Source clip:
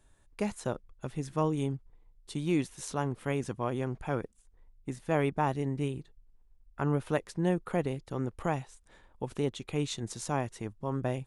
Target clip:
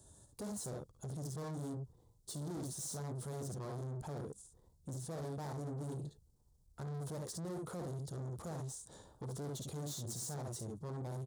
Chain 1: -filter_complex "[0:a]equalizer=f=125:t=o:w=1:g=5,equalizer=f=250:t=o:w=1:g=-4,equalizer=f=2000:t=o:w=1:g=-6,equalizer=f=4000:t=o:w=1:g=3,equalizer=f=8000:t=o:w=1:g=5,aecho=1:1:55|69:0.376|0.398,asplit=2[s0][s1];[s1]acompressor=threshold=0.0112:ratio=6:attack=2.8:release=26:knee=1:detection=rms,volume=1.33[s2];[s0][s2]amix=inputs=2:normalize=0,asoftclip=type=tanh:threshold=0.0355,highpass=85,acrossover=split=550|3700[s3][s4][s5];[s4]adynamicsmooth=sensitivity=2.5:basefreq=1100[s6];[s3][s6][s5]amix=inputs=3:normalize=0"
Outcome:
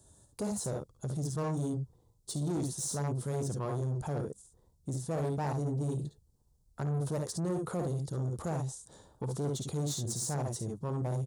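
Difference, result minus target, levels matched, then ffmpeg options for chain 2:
compression: peak gain reduction -6 dB; saturation: distortion -5 dB
-filter_complex "[0:a]equalizer=f=125:t=o:w=1:g=5,equalizer=f=250:t=o:w=1:g=-4,equalizer=f=2000:t=o:w=1:g=-6,equalizer=f=4000:t=o:w=1:g=3,equalizer=f=8000:t=o:w=1:g=5,aecho=1:1:55|69:0.376|0.398,asplit=2[s0][s1];[s1]acompressor=threshold=0.00501:ratio=6:attack=2.8:release=26:knee=1:detection=rms,volume=1.33[s2];[s0][s2]amix=inputs=2:normalize=0,asoftclip=type=tanh:threshold=0.01,highpass=85,acrossover=split=550|3700[s3][s4][s5];[s4]adynamicsmooth=sensitivity=2.5:basefreq=1100[s6];[s3][s6][s5]amix=inputs=3:normalize=0"

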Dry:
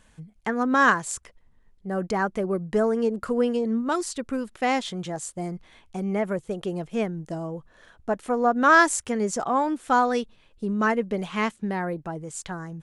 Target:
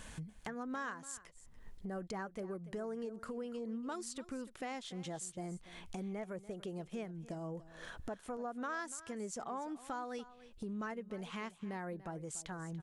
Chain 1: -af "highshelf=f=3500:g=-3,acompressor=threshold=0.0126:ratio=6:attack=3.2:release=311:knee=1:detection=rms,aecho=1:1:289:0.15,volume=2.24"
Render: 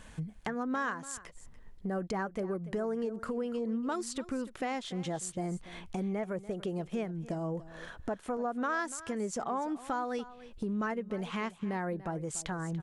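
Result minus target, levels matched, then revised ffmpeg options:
compression: peak gain reduction -8.5 dB; 8 kHz band -3.0 dB
-af "highshelf=f=3500:g=3,acompressor=threshold=0.00422:ratio=6:attack=3.2:release=311:knee=1:detection=rms,aecho=1:1:289:0.15,volume=2.24"

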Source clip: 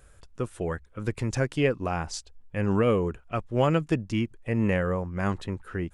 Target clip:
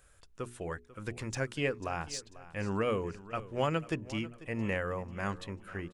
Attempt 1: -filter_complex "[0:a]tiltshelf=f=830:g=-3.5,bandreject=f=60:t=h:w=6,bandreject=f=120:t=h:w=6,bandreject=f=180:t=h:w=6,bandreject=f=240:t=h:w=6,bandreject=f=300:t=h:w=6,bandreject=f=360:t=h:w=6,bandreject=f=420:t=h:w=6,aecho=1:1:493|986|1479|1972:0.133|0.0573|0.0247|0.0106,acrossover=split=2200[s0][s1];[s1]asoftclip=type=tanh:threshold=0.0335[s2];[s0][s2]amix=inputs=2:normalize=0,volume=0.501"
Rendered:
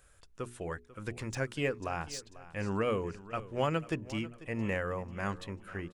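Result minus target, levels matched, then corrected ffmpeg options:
saturation: distortion +11 dB
-filter_complex "[0:a]tiltshelf=f=830:g=-3.5,bandreject=f=60:t=h:w=6,bandreject=f=120:t=h:w=6,bandreject=f=180:t=h:w=6,bandreject=f=240:t=h:w=6,bandreject=f=300:t=h:w=6,bandreject=f=360:t=h:w=6,bandreject=f=420:t=h:w=6,aecho=1:1:493|986|1479|1972:0.133|0.0573|0.0247|0.0106,acrossover=split=2200[s0][s1];[s1]asoftclip=type=tanh:threshold=0.0841[s2];[s0][s2]amix=inputs=2:normalize=0,volume=0.501"

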